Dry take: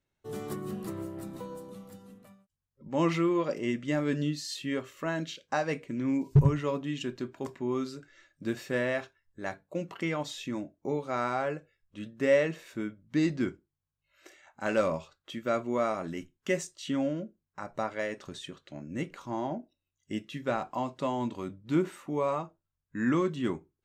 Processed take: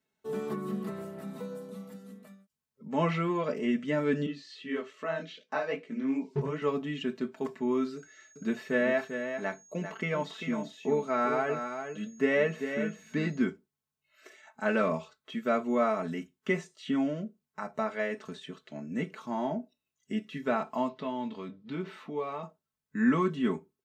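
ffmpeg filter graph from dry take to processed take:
-filter_complex "[0:a]asettb=1/sr,asplit=3[a][b][c];[a]atrim=end=4.264[d];[b]atrim=start=4.26:end=6.62,asetpts=PTS-STARTPTS,afade=t=in:d=0.004:c=qsin,afade=t=out:st=2.356:d=0.004:c=qsin,flanger=delay=16:depth=7.1:speed=2.5,highpass=210,lowpass=5.2k[e];[c]atrim=start=6.616[f];[d][e]acrossfade=d=0.004:c1=hsin:c2=qsin[g];[g][f]acrossfade=d=0.004:c1=qsin:c2=hsin,asettb=1/sr,asplit=3[h][i][j];[h]atrim=end=7.964[k];[i]atrim=start=7.96:end=13.44,asetpts=PTS-STARTPTS,afade=t=in:d=0.004:c=qsin,afade=t=out:st=5.476:d=0.004:c=qsin,aeval=exprs='val(0)+0.001*sin(2*PI*6600*n/s)':c=same,aecho=1:1:395:0.398,atrim=end_sample=241668[l];[j]atrim=start=13.436[m];[k][l]acrossfade=d=0.004:c1=hsin:c2=qsin[n];[n][m]acrossfade=d=0.004:c1=qsin:c2=hsin,asettb=1/sr,asplit=3[o][p][q];[o]atrim=end=20.884[r];[p]atrim=start=20.88:end=22.43,asetpts=PTS-STARTPTS,afade=t=in:d=0.004:c=qsin,afade=t=out:st=1.546:d=0.004:c=qsin,highshelf=f=5.9k:t=q:w=1.5:g=-12,acompressor=threshold=-44dB:ratio=1.5:attack=3.2:release=140:knee=1:detection=peak,asplit=2[s][t];[t]adelay=23,volume=-12dB[u];[s][u]amix=inputs=2:normalize=0,atrim=end_sample=68355[v];[q]atrim=start=22.426[w];[r][v]acrossfade=d=0.004:c1=hsin:c2=qsin[x];[x][w]acrossfade=d=0.004:c1=qsin:c2=hsin,highpass=130,acrossover=split=3300[y][z];[z]acompressor=threshold=-60dB:ratio=4:attack=1:release=60[aa];[y][aa]amix=inputs=2:normalize=0,aecho=1:1:4.6:0.85"

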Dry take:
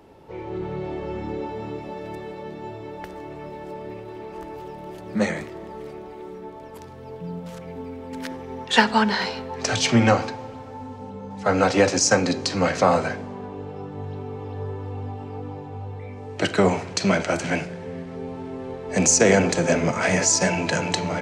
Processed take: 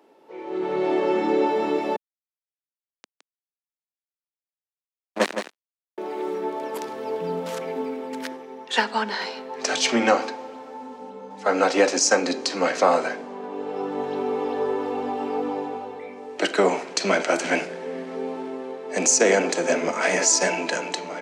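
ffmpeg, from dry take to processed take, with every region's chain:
-filter_complex "[0:a]asettb=1/sr,asplit=3[a][b][c];[a]atrim=end=1.964[d];[b]atrim=start=1.96:end=5.98,asetpts=PTS-STARTPTS,afade=t=in:d=0.004:c=qsin,afade=t=out:st=4.016:d=0.004:c=qsin,acrusher=bits=2:mix=0:aa=0.5,aecho=1:1:165:0.422,atrim=end_sample=177282[e];[c]atrim=start=5.976[f];[d][e]acrossfade=d=0.004:c1=hsin:c2=qsin[g];[g][f]acrossfade=d=0.004:c1=qsin:c2=hsin,highpass=f=260:w=0.5412,highpass=f=260:w=1.3066,dynaudnorm=f=100:g=13:m=16dB,volume=-5.5dB"

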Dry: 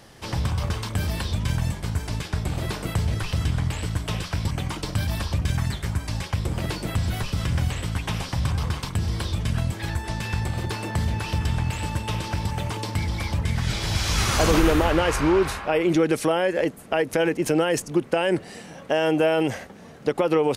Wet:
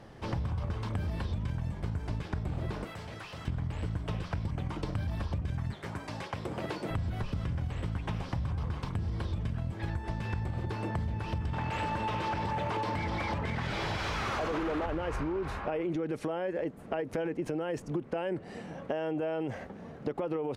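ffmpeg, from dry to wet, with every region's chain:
-filter_complex "[0:a]asettb=1/sr,asplit=3[a][b][c];[a]atrim=end=2.844[d];[b]atrim=start=2.84:end=3.48,asetpts=PTS-STARTPTS,afade=t=in:d=0.004:c=qsin,afade=t=out:st=0.636:d=0.004:c=qsin,highpass=f=1k:p=1,asoftclip=type=hard:threshold=-34.5dB[e];[c]atrim=start=3.476[f];[d][e]acrossfade=d=0.004:c1=hsin:c2=qsin[g];[g][f]acrossfade=d=0.004:c1=qsin:c2=hsin,asettb=1/sr,asplit=3[h][i][j];[h]atrim=end=5.734[k];[i]atrim=start=5.73:end=6.91,asetpts=PTS-STARTPTS,afade=t=in:d=0.004:c=qsin,afade=t=out:st=1.176:d=0.004:c=qsin,highpass=120,bass=f=250:g=-10,treble=f=4k:g=1[l];[j]atrim=start=6.906[m];[k][l]acrossfade=d=0.004:c1=hsin:c2=qsin[n];[n][m]acrossfade=d=0.004:c1=qsin:c2=hsin,asettb=1/sr,asplit=3[o][p][q];[o]atrim=end=11.534[r];[p]atrim=start=11.53:end=14.86,asetpts=PTS-STARTPTS,afade=t=in:d=0.004:c=qsin,afade=t=out:st=3.326:d=0.004:c=qsin,acompressor=threshold=-26dB:ratio=2.5:attack=3.2:release=140:knee=1:detection=peak,asplit=2[s][t];[t]highpass=f=720:p=1,volume=25dB,asoftclip=type=tanh:threshold=-13.5dB[u];[s][u]amix=inputs=2:normalize=0,lowpass=f=3.1k:p=1,volume=-6dB[v];[q]atrim=start=14.856[w];[r][v]acrossfade=d=0.004:c1=hsin:c2=qsin[x];[x][w]acrossfade=d=0.004:c1=qsin:c2=hsin,lowpass=f=1.1k:p=1,alimiter=limit=-17dB:level=0:latency=1:release=28,acompressor=threshold=-30dB:ratio=6"

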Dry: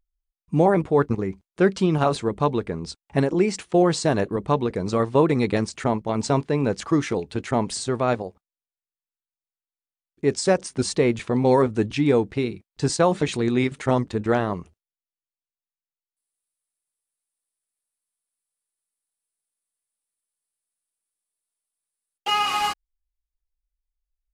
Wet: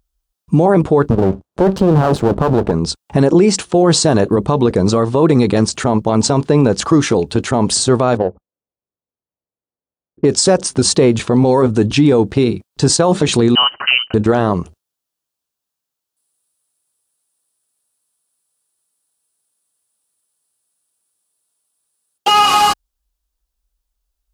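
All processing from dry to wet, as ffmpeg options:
-filter_complex "[0:a]asettb=1/sr,asplit=3[a][b][c];[a]atrim=end=1.104[d];[b]atrim=start=1.1:end=2.72,asetpts=PTS-STARTPTS,afade=t=in:d=0.004:c=qsin,afade=t=out:st=1.616:d=0.004:c=qsin,tiltshelf=f=1.4k:g=9.5,aeval=exprs='max(val(0),0)':c=same[e];[c]atrim=start=2.716[f];[d][e]acrossfade=d=0.004:c1=hsin:c2=qsin[g];[g][f]acrossfade=d=0.004:c1=qsin:c2=hsin,asettb=1/sr,asplit=3[h][i][j];[h]atrim=end=8.174[k];[i]atrim=start=8.17:end=10.25,asetpts=PTS-STARTPTS,afade=t=in:d=0.004:c=qsin,afade=t=out:st=2.076:d=0.004:c=qsin,equalizer=f=530:w=2.7:g=4.5,adynamicsmooth=sensitivity=1.5:basefreq=760[l];[j]atrim=start=10.246[m];[k][l]acrossfade=d=0.004:c1=hsin:c2=qsin[n];[n][m]acrossfade=d=0.004:c1=qsin:c2=hsin,asettb=1/sr,asplit=3[o][p][q];[o]atrim=end=13.554[r];[p]atrim=start=13.55:end=14.14,asetpts=PTS-STARTPTS,afade=t=in:d=0.004:c=qsin,afade=t=out:st=0.586:d=0.004:c=qsin,highpass=f=320:w=0.5412,highpass=f=320:w=1.3066,lowpass=f=2.8k:t=q:w=0.5098,lowpass=f=2.8k:t=q:w=0.6013,lowpass=f=2.8k:t=q:w=0.9,lowpass=f=2.8k:t=q:w=2.563,afreqshift=-3300[s];[q]atrim=start=14.136[t];[r][s]acrossfade=d=0.004:c1=hsin:c2=qsin[u];[u][t]acrossfade=d=0.004:c1=qsin:c2=hsin,highpass=43,equalizer=f=2.1k:t=o:w=0.64:g=-8,alimiter=level_in=17dB:limit=-1dB:release=50:level=0:latency=1,volume=-2dB"

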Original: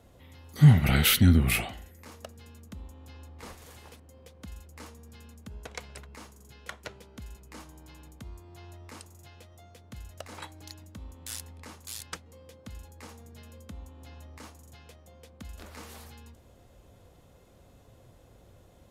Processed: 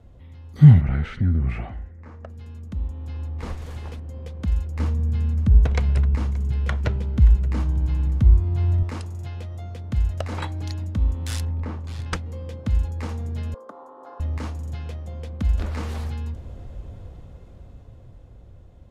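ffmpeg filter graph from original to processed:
-filter_complex "[0:a]asettb=1/sr,asplit=3[a][b][c];[a]atrim=end=0.814[d];[b]atrim=start=0.81:end=2.3,asetpts=PTS-STARTPTS,afade=t=in:d=0.004:c=qsin,afade=t=out:st=1.486:d=0.004:c=qsin,lowpass=f=7.3k:w=0.5412,lowpass=f=7.3k:w=1.3066,acompressor=threshold=-31dB:ratio=2:attack=3.2:release=140:knee=1:detection=peak,highshelf=f=2.4k:t=q:w=1.5:g=-9.5[e];[c]atrim=start=2.296[f];[d][e]acrossfade=d=0.004:c1=hsin:c2=qsin[g];[g][f]acrossfade=d=0.004:c1=qsin:c2=hsin,asettb=1/sr,asplit=3[h][i][j];[h]atrim=end=4.794[k];[i]atrim=start=4.79:end=8.83,asetpts=PTS-STARTPTS,afade=t=in:d=0.004:c=qsin,afade=t=out:st=4.036:d=0.004:c=qsin,bass=f=250:g=8,treble=f=4k:g=-2,aecho=1:1:577:0.106,atrim=end_sample=178164[l];[j]atrim=start=8.826[m];[k][l]acrossfade=d=0.004:c1=hsin:c2=qsin[n];[n][m]acrossfade=d=0.004:c1=qsin:c2=hsin,asettb=1/sr,asplit=3[o][p][q];[o]atrim=end=11.454[r];[p]atrim=start=11.45:end=12.06,asetpts=PTS-STARTPTS,afade=t=in:d=0.004:c=qsin,afade=t=out:st=0.606:d=0.004:c=qsin,lowpass=f=1.1k:p=1,asplit=2[s][t];[t]adelay=45,volume=-10dB[u];[s][u]amix=inputs=2:normalize=0,atrim=end_sample=26901[v];[q]atrim=start=12.056[w];[r][v]acrossfade=d=0.004:c1=hsin:c2=qsin[x];[x][w]acrossfade=d=0.004:c1=qsin:c2=hsin,asettb=1/sr,asplit=3[y][z][aa];[y]atrim=end=13.544[ab];[z]atrim=start=13.54:end=14.2,asetpts=PTS-STARTPTS,afade=t=in:d=0.004:c=qsin,afade=t=out:st=0.656:d=0.004:c=qsin,highpass=f=400:w=0.5412,highpass=f=400:w=1.3066,highshelf=f=1.7k:t=q:w=3:g=-13.5[ac];[aa]atrim=start=14.196[ad];[ab][ac]acrossfade=d=0.004:c1=hsin:c2=qsin[ae];[ae][ad]acrossfade=d=0.004:c1=qsin:c2=hsin,aemphasis=mode=reproduction:type=bsi,dynaudnorm=f=210:g=21:m=12dB,volume=-1dB"

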